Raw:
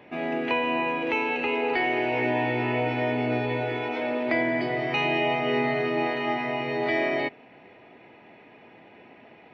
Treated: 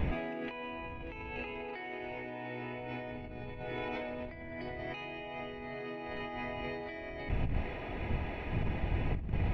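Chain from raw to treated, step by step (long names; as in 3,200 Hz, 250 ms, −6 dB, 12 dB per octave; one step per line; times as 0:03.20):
wind on the microphone 100 Hz −34 dBFS
compressor whose output falls as the input rises −38 dBFS, ratio −1
level −1 dB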